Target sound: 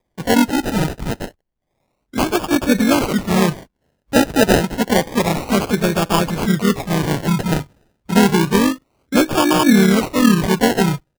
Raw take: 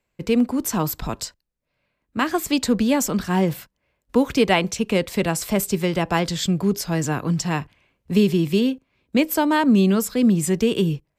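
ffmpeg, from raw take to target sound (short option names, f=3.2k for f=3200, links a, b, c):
-filter_complex "[0:a]asplit=3[a][b][c];[b]asetrate=37084,aresample=44100,atempo=1.18921,volume=-15dB[d];[c]asetrate=52444,aresample=44100,atempo=0.840896,volume=-5dB[e];[a][d][e]amix=inputs=3:normalize=0,acrusher=samples=31:mix=1:aa=0.000001:lfo=1:lforange=18.6:lforate=0.29,volume=3dB"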